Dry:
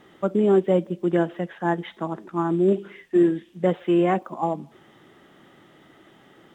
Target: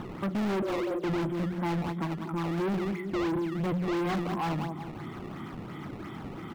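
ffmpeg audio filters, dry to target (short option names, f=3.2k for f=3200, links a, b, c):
-filter_complex "[0:a]asplit=2[a][b];[b]acompressor=mode=upward:threshold=-26dB:ratio=2.5,volume=-1dB[c];[a][c]amix=inputs=2:normalize=0,bandreject=f=60:t=h:w=6,bandreject=f=120:t=h:w=6,bandreject=f=180:t=h:w=6,aecho=1:1:0.9:0.67,asplit=2[d][e];[e]aecho=0:1:186|372|558|744:0.251|0.0929|0.0344|0.0127[f];[d][f]amix=inputs=2:normalize=0,asettb=1/sr,asplit=3[g][h][i];[g]atrim=end=2.044[j];[h]atrim=start=2.04:end=2.58,asetpts=PTS-STARTPTS,afade=t=in:d=0.004:c=qsin,afade=t=out:st=0.536:d=0.004:c=qsin,acompressor=threshold=-25dB:ratio=3[k];[i]atrim=start=2.576[l];[j][k]acrossfade=d=0.004:c1=hsin:c2=qsin[m];[m][l]acrossfade=d=0.004:c1=qsin:c2=hsin,asoftclip=type=hard:threshold=-19.5dB,asettb=1/sr,asplit=3[n][o][p];[n]atrim=end=0.624[q];[o]atrim=start=0.62:end=1.04,asetpts=PTS-STARTPTS,afade=t=in:d=0.004:c=qsin,afade=t=out:st=0.416:d=0.004:c=qsin,afreqshift=170[r];[p]atrim=start=1.036[s];[q][r]acrossfade=d=0.004:c1=hsin:c2=qsin[t];[t][s]acrossfade=d=0.004:c1=qsin:c2=hsin,highpass=f=63:w=0.5412,highpass=f=63:w=1.3066,acrusher=samples=16:mix=1:aa=0.000001:lfo=1:lforange=25.6:lforate=2.9,bass=f=250:g=6,treble=f=4k:g=-14,asoftclip=type=tanh:threshold=-22dB,volume=-4.5dB"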